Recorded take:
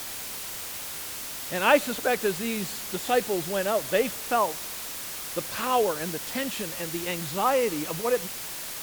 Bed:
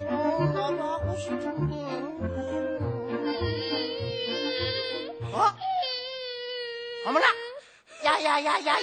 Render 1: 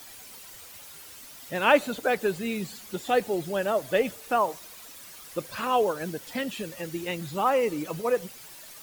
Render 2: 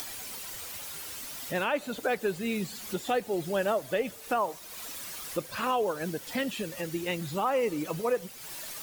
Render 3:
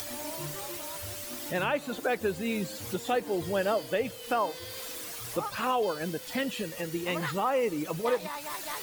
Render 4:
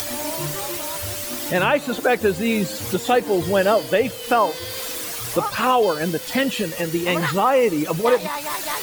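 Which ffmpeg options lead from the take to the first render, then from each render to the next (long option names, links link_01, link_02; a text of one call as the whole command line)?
ffmpeg -i in.wav -af "afftdn=noise_reduction=12:noise_floor=-36" out.wav
ffmpeg -i in.wav -af "acompressor=mode=upward:threshold=-32dB:ratio=2.5,alimiter=limit=-18.5dB:level=0:latency=1:release=302" out.wav
ffmpeg -i in.wav -i bed.wav -filter_complex "[1:a]volume=-14.5dB[link_01];[0:a][link_01]amix=inputs=2:normalize=0" out.wav
ffmpeg -i in.wav -af "volume=10.5dB" out.wav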